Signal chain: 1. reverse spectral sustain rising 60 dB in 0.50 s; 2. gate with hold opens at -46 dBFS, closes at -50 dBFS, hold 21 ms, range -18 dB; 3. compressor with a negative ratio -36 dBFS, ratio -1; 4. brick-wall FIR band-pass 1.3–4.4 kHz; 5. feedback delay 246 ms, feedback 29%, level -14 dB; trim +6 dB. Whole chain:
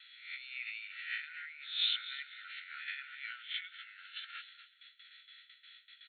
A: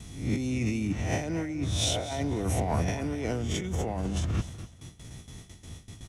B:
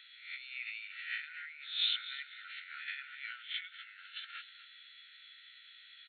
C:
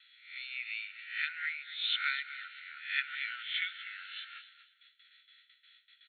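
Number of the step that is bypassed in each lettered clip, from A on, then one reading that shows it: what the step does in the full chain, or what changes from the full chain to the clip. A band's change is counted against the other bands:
4, crest factor change -7.0 dB; 2, momentary loudness spread change -2 LU; 3, momentary loudness spread change -11 LU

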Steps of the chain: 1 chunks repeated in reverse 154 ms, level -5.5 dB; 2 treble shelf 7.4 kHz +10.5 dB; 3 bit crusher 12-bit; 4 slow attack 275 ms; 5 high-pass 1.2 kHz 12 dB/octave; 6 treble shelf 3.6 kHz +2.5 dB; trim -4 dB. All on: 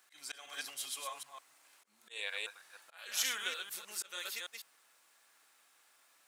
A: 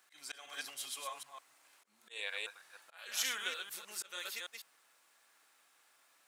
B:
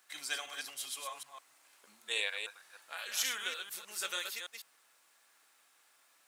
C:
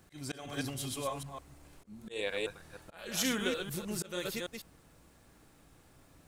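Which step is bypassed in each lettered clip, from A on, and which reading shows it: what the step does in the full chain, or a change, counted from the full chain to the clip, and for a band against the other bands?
6, loudness change -1.5 LU; 4, crest factor change -2.0 dB; 5, 250 Hz band +25.5 dB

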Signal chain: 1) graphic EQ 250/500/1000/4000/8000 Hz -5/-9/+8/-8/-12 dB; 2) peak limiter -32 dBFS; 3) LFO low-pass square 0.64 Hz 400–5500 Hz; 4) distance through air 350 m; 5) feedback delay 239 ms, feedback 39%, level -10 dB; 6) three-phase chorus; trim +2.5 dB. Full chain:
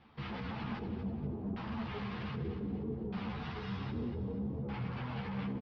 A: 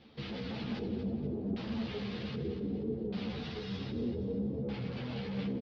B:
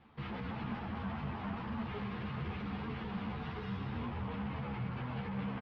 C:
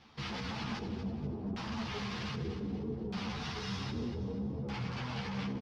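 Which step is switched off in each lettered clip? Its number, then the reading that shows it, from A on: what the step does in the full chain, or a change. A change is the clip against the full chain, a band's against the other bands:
1, momentary loudness spread change +2 LU; 3, 1 kHz band +3.5 dB; 4, 4 kHz band +7.5 dB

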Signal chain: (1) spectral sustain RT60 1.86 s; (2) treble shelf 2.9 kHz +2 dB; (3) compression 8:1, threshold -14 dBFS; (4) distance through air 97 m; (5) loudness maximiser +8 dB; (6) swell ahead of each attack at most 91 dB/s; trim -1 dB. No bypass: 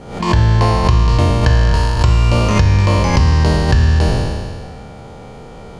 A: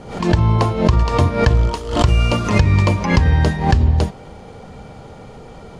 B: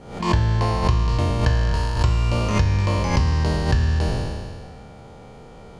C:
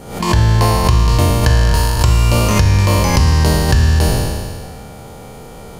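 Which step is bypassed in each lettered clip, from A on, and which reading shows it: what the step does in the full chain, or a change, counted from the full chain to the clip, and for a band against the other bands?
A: 1, momentary loudness spread change -4 LU; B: 5, crest factor change +2.5 dB; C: 4, 8 kHz band +8.0 dB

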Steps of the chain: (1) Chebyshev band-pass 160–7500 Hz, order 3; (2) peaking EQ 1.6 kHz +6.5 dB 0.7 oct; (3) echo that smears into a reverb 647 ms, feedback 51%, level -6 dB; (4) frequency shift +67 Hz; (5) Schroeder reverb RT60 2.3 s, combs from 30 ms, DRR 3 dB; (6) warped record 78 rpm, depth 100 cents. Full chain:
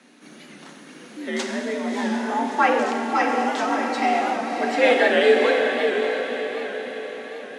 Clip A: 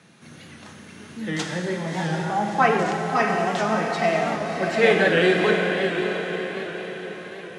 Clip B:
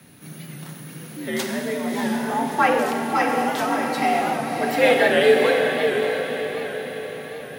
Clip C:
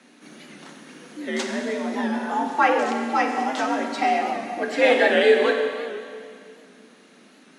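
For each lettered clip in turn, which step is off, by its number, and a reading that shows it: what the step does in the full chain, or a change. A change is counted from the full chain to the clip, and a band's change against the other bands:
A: 4, 1 kHz band -1.5 dB; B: 1, momentary loudness spread change +7 LU; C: 3, momentary loudness spread change +2 LU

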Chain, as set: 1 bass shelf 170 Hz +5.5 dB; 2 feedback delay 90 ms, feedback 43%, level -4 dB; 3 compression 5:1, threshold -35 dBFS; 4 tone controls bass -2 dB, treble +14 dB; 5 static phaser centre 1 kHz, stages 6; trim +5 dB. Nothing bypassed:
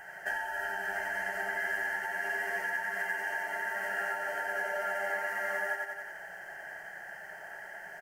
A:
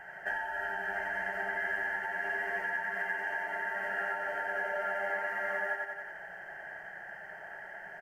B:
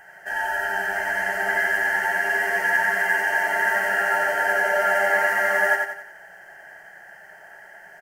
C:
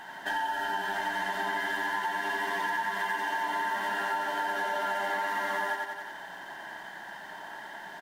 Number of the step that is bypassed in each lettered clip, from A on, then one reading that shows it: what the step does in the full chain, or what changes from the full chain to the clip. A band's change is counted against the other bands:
4, 4 kHz band -4.0 dB; 3, mean gain reduction 8.5 dB; 5, 4 kHz band +8.5 dB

